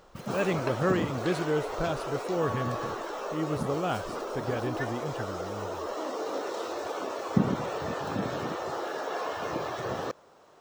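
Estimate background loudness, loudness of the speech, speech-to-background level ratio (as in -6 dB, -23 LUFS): -33.5 LUFS, -32.5 LUFS, 1.0 dB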